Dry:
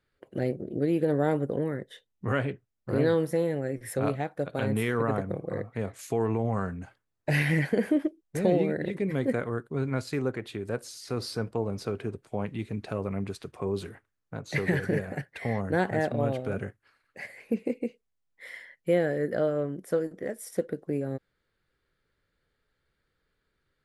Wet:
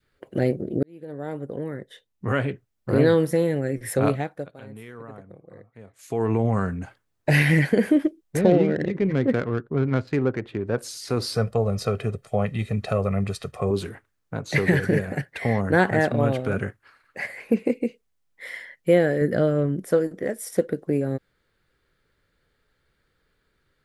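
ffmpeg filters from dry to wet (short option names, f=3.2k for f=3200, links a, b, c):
-filter_complex "[0:a]asettb=1/sr,asplit=3[a][b][c];[a]atrim=end=8.414[d];[b]atrim=start=8.41:end=10.78,asetpts=PTS-STARTPTS,afade=t=in:d=0.004:c=qsin,afade=t=out:st=2.366:d=0.004:c=qsin,adynamicsmooth=sensitivity=3.5:basefreq=1.5k[e];[c]atrim=start=10.776[f];[d][e]acrossfade=d=0.004:c1=hsin:c2=qsin[g];[g][f]acrossfade=d=0.004:c1=qsin:c2=hsin,asettb=1/sr,asplit=3[h][i][j];[h]atrim=end=11.354[k];[i]atrim=start=11.35:end=13.71,asetpts=PTS-STARTPTS,afade=t=in:d=0.004:c=qsin,afade=t=out:st=2.356:d=0.004:c=qsin,aecho=1:1:1.6:0.7,atrim=end_sample=104076[l];[j]atrim=start=13.706[m];[k][l]acrossfade=d=0.004:c1=hsin:c2=qsin[n];[n][m]acrossfade=d=0.004:c1=qsin:c2=hsin,asettb=1/sr,asplit=3[o][p][q];[o]atrim=end=15.664[r];[p]atrim=start=15.66:end=17.71,asetpts=PTS-STARTPTS,afade=t=in:d=0.004:c=qsin,afade=t=out:st=2.046:d=0.004:c=qsin,equalizer=f=1.2k:t=o:w=1.5:g=5[s];[q]atrim=start=17.706[t];[r][s]acrossfade=d=0.004:c1=hsin:c2=qsin[u];[u][t]acrossfade=d=0.004:c1=qsin:c2=hsin,asettb=1/sr,asplit=3[v][w][x];[v]atrim=end=19.214[y];[w]atrim=start=19.21:end=19.9,asetpts=PTS-STARTPTS,afade=t=in:d=0.004:c=qsin,afade=t=out:st=0.686:d=0.004:c=qsin,bass=f=250:g=6,treble=f=4k:g=0[z];[x]atrim=start=19.896[aa];[y][z]acrossfade=d=0.004:c1=hsin:c2=qsin[ab];[ab][aa]acrossfade=d=0.004:c1=qsin:c2=hsin,asplit=4[ac][ad][ae][af];[ac]atrim=end=0.83,asetpts=PTS-STARTPTS,afade=t=out:st=0.826:d=0.004:c=hsin[ag];[ad]atrim=start=0.83:end=4.54,asetpts=PTS-STARTPTS,afade=t=in:d=2.15,afade=t=out:st=3.28:d=0.43:silence=0.0944061[ah];[ae]atrim=start=4.54:end=5.95,asetpts=PTS-STARTPTS,volume=-20.5dB[ai];[af]atrim=start=5.95,asetpts=PTS-STARTPTS,afade=t=in:d=0.43:silence=0.0944061[aj];[ag][ah][ai][aj]concat=n=4:v=0:a=1,adynamicequalizer=threshold=0.0112:dfrequency=770:dqfactor=0.92:tfrequency=770:tqfactor=0.92:attack=5:release=100:ratio=0.375:range=3:mode=cutabove:tftype=bell,volume=7dB"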